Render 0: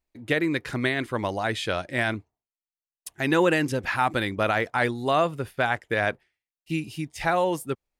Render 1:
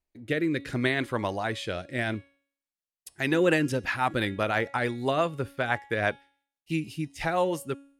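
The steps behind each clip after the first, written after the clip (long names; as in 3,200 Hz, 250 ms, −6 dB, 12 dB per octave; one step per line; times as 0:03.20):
rotating-speaker cabinet horn 0.7 Hz, later 6 Hz, at 0:02.83
hum removal 278.5 Hz, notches 40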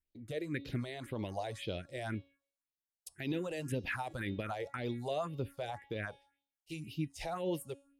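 brickwall limiter −20.5 dBFS, peak gain reduction 11.5 dB
all-pass phaser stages 4, 1.9 Hz, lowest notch 210–1,700 Hz
level −4.5 dB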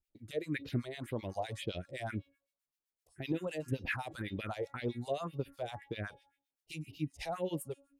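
two-band tremolo in antiphase 7.8 Hz, depth 100%, crossover 1,200 Hz
level +4.5 dB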